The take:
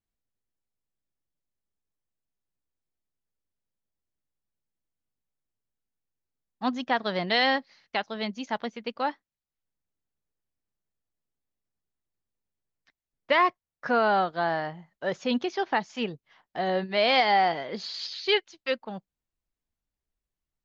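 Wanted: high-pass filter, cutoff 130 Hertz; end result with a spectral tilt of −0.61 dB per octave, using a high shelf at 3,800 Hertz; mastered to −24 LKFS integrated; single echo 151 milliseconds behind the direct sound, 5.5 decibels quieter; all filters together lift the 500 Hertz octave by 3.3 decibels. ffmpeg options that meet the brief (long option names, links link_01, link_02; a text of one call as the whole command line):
ffmpeg -i in.wav -af "highpass=130,equalizer=frequency=500:width_type=o:gain=4,highshelf=frequency=3800:gain=6.5,aecho=1:1:151:0.531" out.wav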